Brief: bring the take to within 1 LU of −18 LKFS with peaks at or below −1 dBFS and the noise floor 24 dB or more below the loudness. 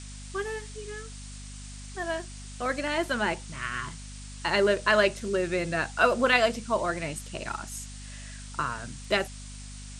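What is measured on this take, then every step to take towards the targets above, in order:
mains hum 50 Hz; hum harmonics up to 250 Hz; level of the hum −40 dBFS; background noise floor −42 dBFS; target noise floor −52 dBFS; integrated loudness −28.0 LKFS; sample peak −7.5 dBFS; target loudness −18.0 LKFS
→ hum removal 50 Hz, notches 5
noise reduction from a noise print 10 dB
level +10 dB
brickwall limiter −1 dBFS

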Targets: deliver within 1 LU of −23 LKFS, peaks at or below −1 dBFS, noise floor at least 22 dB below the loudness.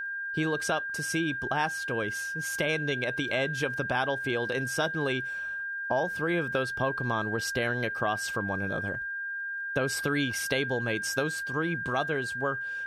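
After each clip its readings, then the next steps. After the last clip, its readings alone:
crackle rate 21 per second; interfering tone 1,600 Hz; level of the tone −32 dBFS; integrated loudness −29.5 LKFS; sample peak −13.5 dBFS; target loudness −23.0 LKFS
→ click removal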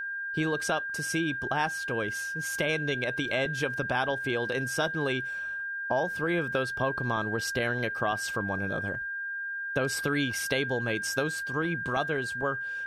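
crackle rate 0 per second; interfering tone 1,600 Hz; level of the tone −32 dBFS
→ notch filter 1,600 Hz, Q 30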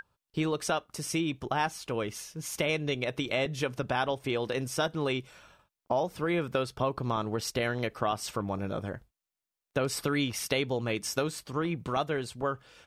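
interfering tone none found; integrated loudness −31.5 LKFS; sample peak −14.0 dBFS; target loudness −23.0 LKFS
→ level +8.5 dB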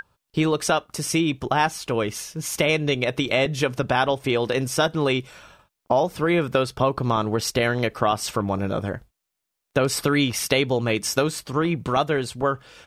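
integrated loudness −23.0 LKFS; sample peak −5.5 dBFS; background noise floor −81 dBFS

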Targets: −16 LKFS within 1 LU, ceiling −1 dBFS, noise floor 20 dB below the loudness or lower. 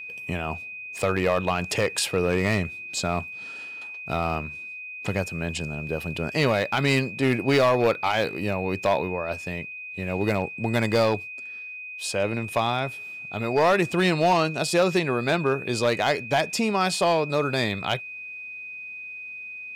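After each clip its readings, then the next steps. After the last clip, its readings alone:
share of clipped samples 0.8%; peaks flattened at −14.0 dBFS; interfering tone 2,500 Hz; level of the tone −35 dBFS; integrated loudness −25.5 LKFS; sample peak −14.0 dBFS; target loudness −16.0 LKFS
→ clipped peaks rebuilt −14 dBFS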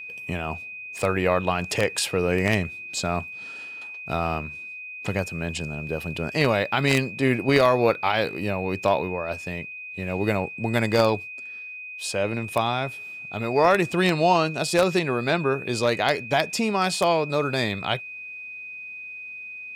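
share of clipped samples 0.0%; interfering tone 2,500 Hz; level of the tone −35 dBFS
→ notch filter 2,500 Hz, Q 30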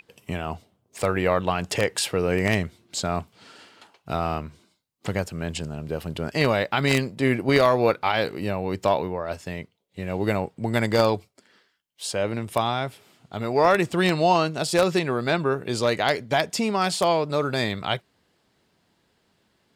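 interfering tone none found; integrated loudness −24.5 LKFS; sample peak −4.5 dBFS; target loudness −16.0 LKFS
→ level +8.5 dB
brickwall limiter −1 dBFS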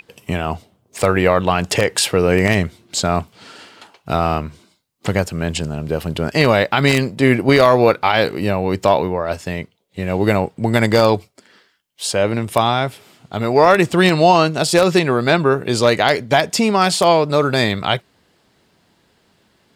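integrated loudness −16.5 LKFS; sample peak −1.0 dBFS; background noise floor −61 dBFS

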